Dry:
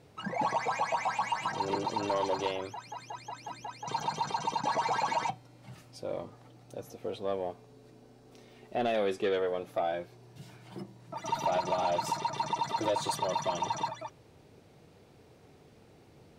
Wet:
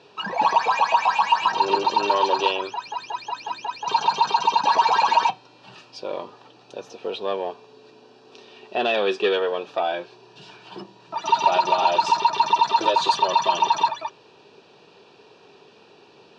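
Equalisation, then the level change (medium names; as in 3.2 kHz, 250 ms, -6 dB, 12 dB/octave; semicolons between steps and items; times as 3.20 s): Butterworth band-stop 2.1 kHz, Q 5; cabinet simulation 130–4700 Hz, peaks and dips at 200 Hz +3 dB, 400 Hz +9 dB, 970 Hz +8 dB, 2.6 kHz +5 dB; tilt EQ +3.5 dB/octave; +7.0 dB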